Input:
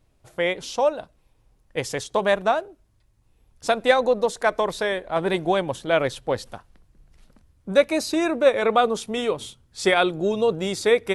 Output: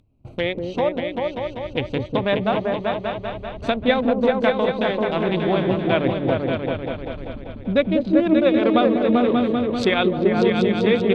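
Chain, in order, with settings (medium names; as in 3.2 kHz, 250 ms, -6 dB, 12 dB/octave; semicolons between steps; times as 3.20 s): local Wiener filter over 25 samples; in parallel at +1 dB: compression, threshold -31 dBFS, peak gain reduction 18.5 dB; on the sum: fifteen-band graphic EQ 100 Hz +12 dB, 250 Hz +10 dB, 2.5 kHz +7 dB; upward compressor, threshold -24 dBFS; low-pass that closes with the level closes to 2.2 kHz, closed at -15 dBFS; peaking EQ 3.6 kHz +13 dB 0.44 oct; on a send: delay with an opening low-pass 195 ms, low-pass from 400 Hz, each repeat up 2 oct, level 0 dB; on the sum: gate with hold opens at -22 dBFS; trim -4.5 dB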